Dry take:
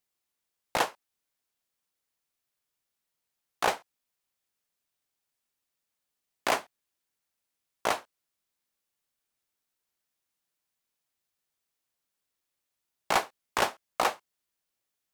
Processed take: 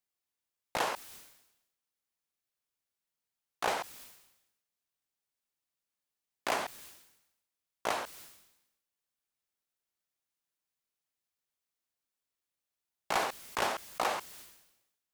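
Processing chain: sustainer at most 64 dB/s; gain -6 dB

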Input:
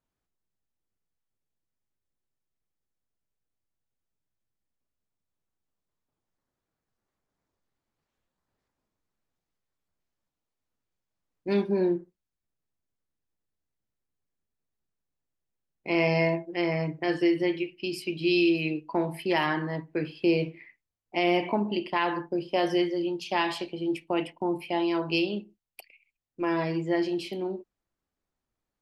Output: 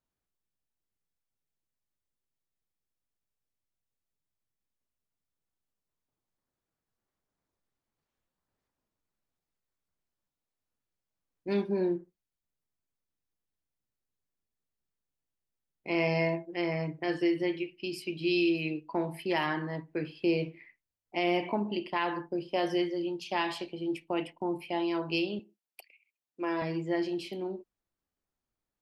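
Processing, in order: 25.39–26.62 HPF 240 Hz 12 dB/oct; gain -4 dB

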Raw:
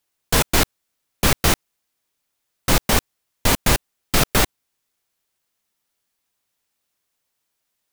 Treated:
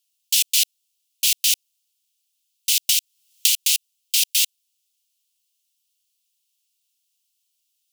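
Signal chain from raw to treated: elliptic high-pass 2800 Hz, stop band 60 dB; 2.87–3.68 three-band squash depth 100%; gain +4 dB

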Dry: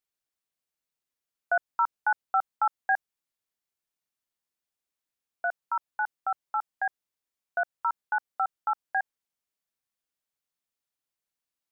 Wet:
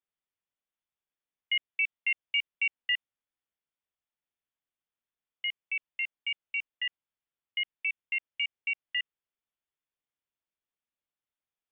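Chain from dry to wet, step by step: inverted band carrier 3600 Hz; gain -3.5 dB

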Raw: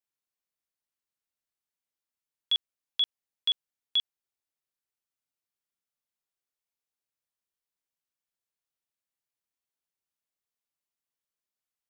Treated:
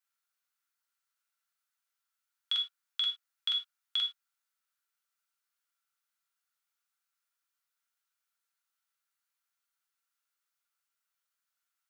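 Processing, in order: HPF 1000 Hz 12 dB/oct; bell 1400 Hz +12.5 dB 0.29 oct; in parallel at -1 dB: negative-ratio compressor -30 dBFS, ratio -1; on the sum: non-linear reverb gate 0.13 s falling, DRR 2.5 dB; gain -6.5 dB

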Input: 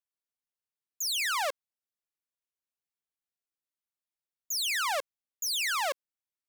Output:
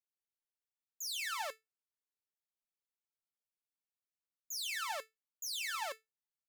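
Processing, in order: resonator 440 Hz, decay 0.18 s, harmonics all, mix 80%; gain +1 dB

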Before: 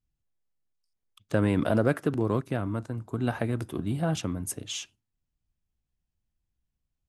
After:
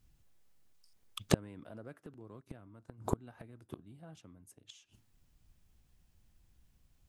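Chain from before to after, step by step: flipped gate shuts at -26 dBFS, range -39 dB; gain +14 dB

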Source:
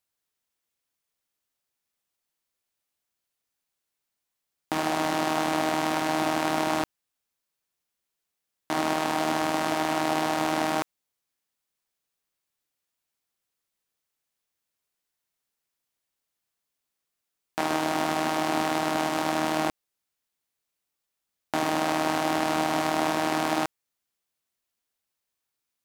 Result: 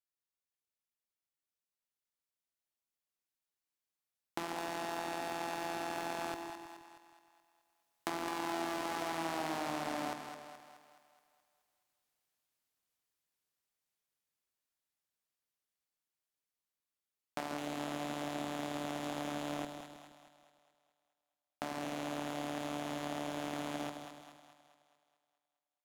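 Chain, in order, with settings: Doppler pass-by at 9.49, 25 m/s, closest 9.6 m; compressor 12:1, threshold -54 dBFS, peak gain reduction 32 dB; sample leveller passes 1; split-band echo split 560 Hz, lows 0.157 s, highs 0.212 s, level -7 dB; gain +15.5 dB

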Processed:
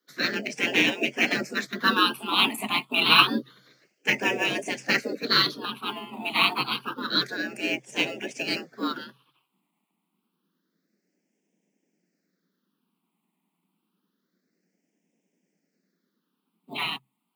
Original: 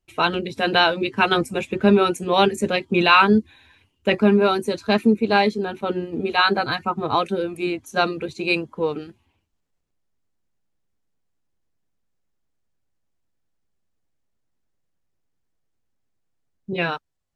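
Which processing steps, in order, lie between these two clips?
spectral gate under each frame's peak -15 dB weak; in parallel at -12 dB: sample-and-hold 11×; on the sum: phaser stages 6, 0.28 Hz, lowest notch 390–1100 Hz; frequency shift +130 Hz; gain +9 dB

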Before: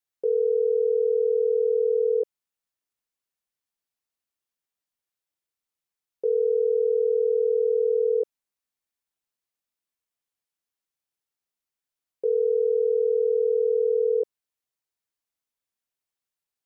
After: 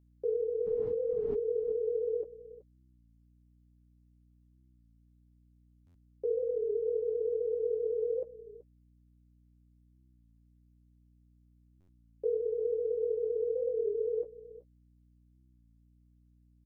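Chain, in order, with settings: 0.65–1.34 wind noise 300 Hz -30 dBFS; flange 1.3 Hz, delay 8 ms, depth 6.8 ms, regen -28%; reverb removal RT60 1.1 s; echo 0.375 s -16.5 dB; hum 60 Hz, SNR 28 dB; stuck buffer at 5.86/11.8, samples 512, times 7; record warp 33 1/3 rpm, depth 100 cents; gain -3.5 dB

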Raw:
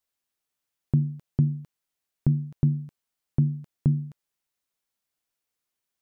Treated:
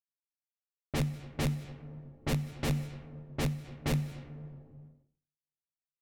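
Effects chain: one diode to ground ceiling -17 dBFS; wrapped overs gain 21 dB; EQ curve 250 Hz 0 dB, 360 Hz -10 dB, 560 Hz -8 dB, 880 Hz -12 dB, 1400 Hz -11 dB, 2100 Hz -5 dB; plate-style reverb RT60 3.6 s, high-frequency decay 1×, DRR 9.5 dB; low-pass opened by the level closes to 440 Hz, open at -29 dBFS; gate -58 dBFS, range -42 dB; ending taper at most 110 dB/s

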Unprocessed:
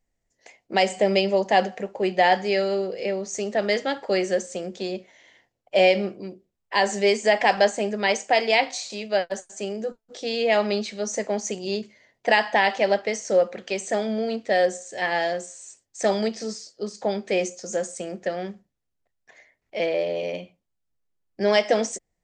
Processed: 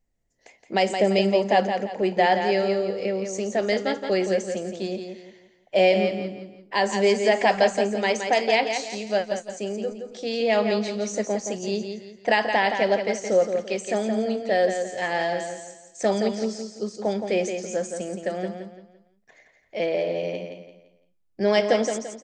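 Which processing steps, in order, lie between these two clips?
low shelf 480 Hz +5.5 dB; feedback echo 0.17 s, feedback 34%, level -7 dB; gain -3 dB

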